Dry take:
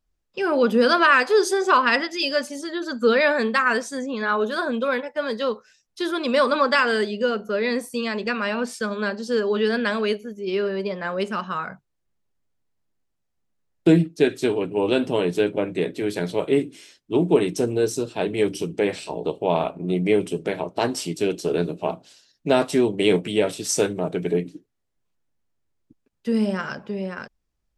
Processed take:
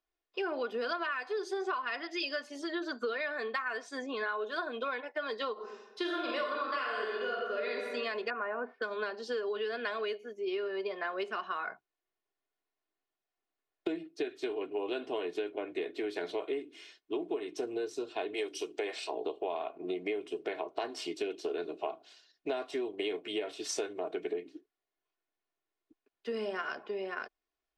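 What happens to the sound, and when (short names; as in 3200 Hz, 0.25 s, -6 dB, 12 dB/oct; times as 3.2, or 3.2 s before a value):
5.52–7.71 reverb throw, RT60 1.2 s, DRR -3 dB
8.3–8.82 LPF 1600 Hz 24 dB/oct
18.34–19.07 tone controls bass -13 dB, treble +8 dB
whole clip: three-band isolator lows -22 dB, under 330 Hz, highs -18 dB, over 4900 Hz; comb 2.8 ms, depth 55%; compressor 12:1, threshold -28 dBFS; gain -3.5 dB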